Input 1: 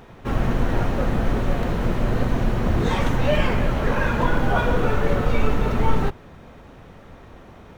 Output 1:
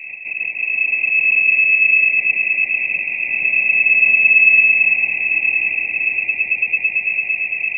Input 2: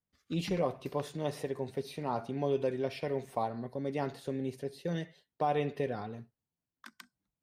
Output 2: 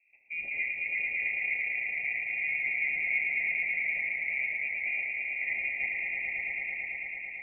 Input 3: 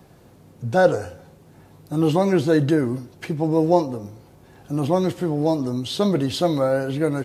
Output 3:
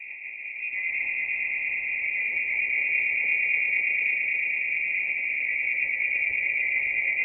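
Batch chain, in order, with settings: per-bin compression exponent 0.6; elliptic band-stop 650–1900 Hz, stop band 40 dB; low-pass opened by the level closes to 1200 Hz, open at -12.5 dBFS; reverse; compressor 6:1, threshold -24 dBFS; reverse; low shelf 74 Hz +8 dB; rotary speaker horn 6.3 Hz; on a send: swelling echo 0.111 s, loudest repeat 5, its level -4.5 dB; on the sum: inverted band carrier 2600 Hz; gain -3 dB

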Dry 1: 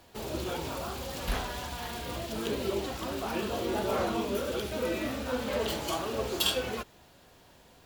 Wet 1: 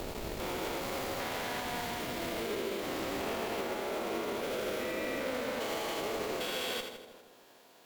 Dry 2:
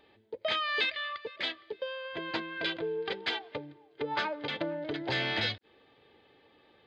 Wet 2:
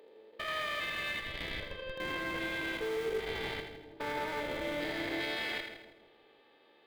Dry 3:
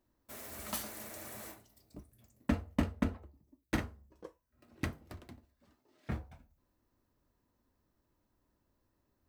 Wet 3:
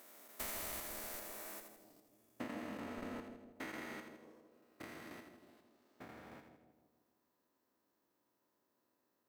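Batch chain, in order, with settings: stepped spectrum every 0.4 s; HPF 300 Hz 12 dB/oct; bell 15000 Hz +5.5 dB 0.22 oct; in parallel at -4.5 dB: Schmitt trigger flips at -36.5 dBFS; on the sum: transient shaper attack +6 dB, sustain -8 dB; dynamic EQ 2100 Hz, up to +7 dB, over -59 dBFS, Q 4; limiter -28.5 dBFS; split-band echo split 780 Hz, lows 0.156 s, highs 81 ms, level -7 dB

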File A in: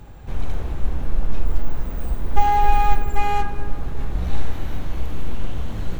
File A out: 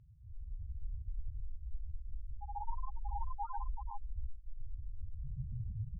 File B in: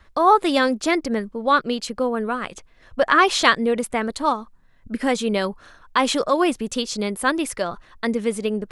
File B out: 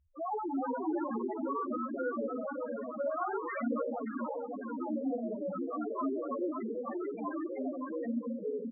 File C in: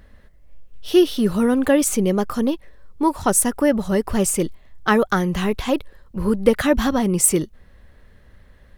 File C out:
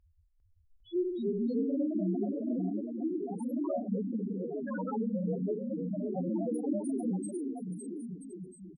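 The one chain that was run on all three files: two-slope reverb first 0.72 s, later 3.1 s, from -25 dB, DRR -3 dB; tube stage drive 14 dB, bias 0.55; low shelf 84 Hz -3 dB; on a send: bouncing-ball echo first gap 0.56 s, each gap 0.75×, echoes 5; on the sum: loudest bins only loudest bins 1; echoes that change speed 0.401 s, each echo +2 st, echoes 2; high shelf 7600 Hz -11.5 dB; gain -7.5 dB

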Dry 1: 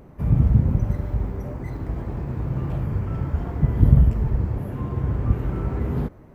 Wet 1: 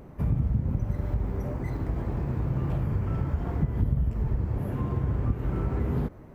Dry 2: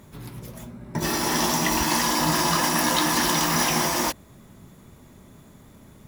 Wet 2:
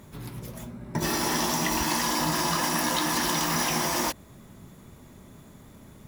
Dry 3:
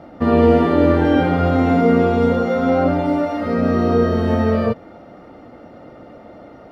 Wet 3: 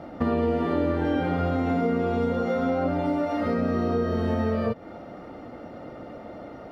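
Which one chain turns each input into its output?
compressor 4:1, threshold -23 dBFS

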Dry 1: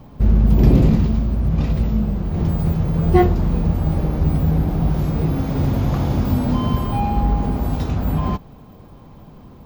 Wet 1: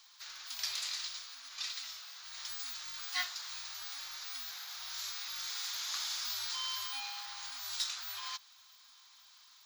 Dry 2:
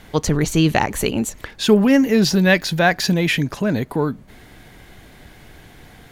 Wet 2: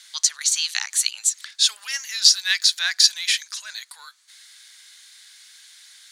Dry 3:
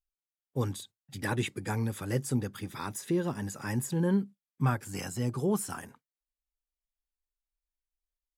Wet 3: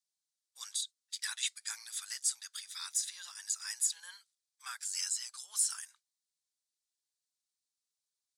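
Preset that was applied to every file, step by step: inverse Chebyshev high-pass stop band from 320 Hz, stop band 70 dB; band shelf 5900 Hz +14.5 dB; gain -5 dB

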